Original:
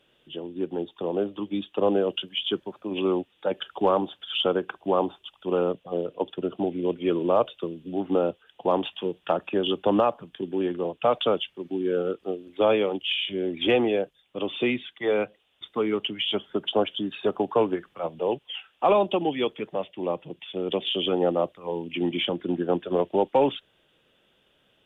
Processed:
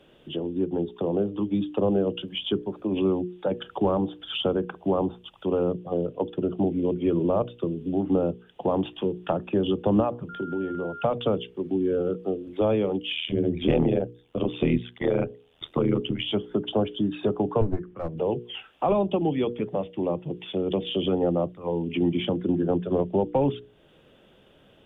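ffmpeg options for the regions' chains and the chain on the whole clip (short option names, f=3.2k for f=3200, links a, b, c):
-filter_complex "[0:a]asettb=1/sr,asplit=3[a][b][c];[a]atrim=end=10.294[d];[b]atrim=start=10.29:end=11.04,asetpts=PTS-STARTPTS,afade=t=in:d=0.004:c=qsin,afade=t=out:st=0.746:d=0.004:c=qsin,acompressor=threshold=-37dB:ratio=2:attack=3.2:release=140:knee=1:detection=peak,aeval=exprs='val(0)+0.0126*sin(2*PI*1400*n/s)':c=same[e];[c]atrim=start=11.036[f];[d][e]acrossfade=d=0.004:c1=hsin:c2=qsin[g];[g][f]acrossfade=d=0.004:c1=qsin:c2=hsin,asettb=1/sr,asplit=3[h][i][j];[h]atrim=end=13.154[k];[i]atrim=start=13.15:end=16.24,asetpts=PTS-STARTPTS,afade=t=in:d=0.004:c=qsin,afade=t=out:st=3.086:d=0.004:c=qsin,acontrast=24,tremolo=f=80:d=0.947[l];[j]atrim=start=16.236[m];[k][l]acrossfade=d=0.004:c1=hsin:c2=qsin[n];[n][m]acrossfade=d=0.004:c1=qsin:c2=hsin,asettb=1/sr,asplit=3[o][p][q];[o]atrim=end=17.614[r];[p]atrim=start=17.61:end=18.18,asetpts=PTS-STARTPTS,afade=t=in:d=0.004:c=qsin,afade=t=out:st=0.566:d=0.004:c=qsin,lowpass=1.6k,equalizer=f=770:w=1.1:g=-10,aeval=exprs='clip(val(0),-1,0.0168)':c=same[s];[q]atrim=start=18.176[t];[r][s]acrossfade=d=0.004:c1=hsin:c2=qsin[u];[u][t]acrossfade=d=0.004:c1=qsin:c2=hsin,tiltshelf=f=970:g=6,bandreject=f=60:t=h:w=6,bandreject=f=120:t=h:w=6,bandreject=f=180:t=h:w=6,bandreject=f=240:t=h:w=6,bandreject=f=300:t=h:w=6,bandreject=f=360:t=h:w=6,bandreject=f=420:t=h:w=6,bandreject=f=480:t=h:w=6,acrossover=split=160[v][w];[w]acompressor=threshold=-41dB:ratio=2[x];[v][x]amix=inputs=2:normalize=0,volume=8dB"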